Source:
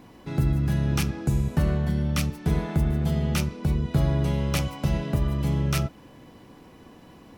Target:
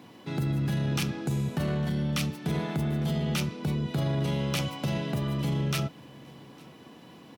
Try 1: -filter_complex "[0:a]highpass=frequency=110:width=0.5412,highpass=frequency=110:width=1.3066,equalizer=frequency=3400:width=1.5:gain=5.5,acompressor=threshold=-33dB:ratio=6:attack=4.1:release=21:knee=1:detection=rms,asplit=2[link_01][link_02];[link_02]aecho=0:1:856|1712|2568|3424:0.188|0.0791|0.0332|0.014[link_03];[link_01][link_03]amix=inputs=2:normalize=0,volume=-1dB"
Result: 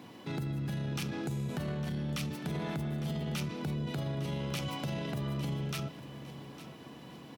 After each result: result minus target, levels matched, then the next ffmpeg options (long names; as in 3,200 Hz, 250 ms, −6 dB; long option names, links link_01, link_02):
echo-to-direct +11.5 dB; downward compressor: peak gain reduction +7.5 dB
-filter_complex "[0:a]highpass=frequency=110:width=0.5412,highpass=frequency=110:width=1.3066,equalizer=frequency=3400:width=1.5:gain=5.5,acompressor=threshold=-33dB:ratio=6:attack=4.1:release=21:knee=1:detection=rms,asplit=2[link_01][link_02];[link_02]aecho=0:1:856|1712:0.0501|0.021[link_03];[link_01][link_03]amix=inputs=2:normalize=0,volume=-1dB"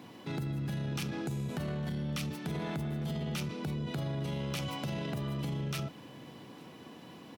downward compressor: peak gain reduction +7.5 dB
-filter_complex "[0:a]highpass=frequency=110:width=0.5412,highpass=frequency=110:width=1.3066,equalizer=frequency=3400:width=1.5:gain=5.5,acompressor=threshold=-24dB:ratio=6:attack=4.1:release=21:knee=1:detection=rms,asplit=2[link_01][link_02];[link_02]aecho=0:1:856|1712:0.0501|0.021[link_03];[link_01][link_03]amix=inputs=2:normalize=0,volume=-1dB"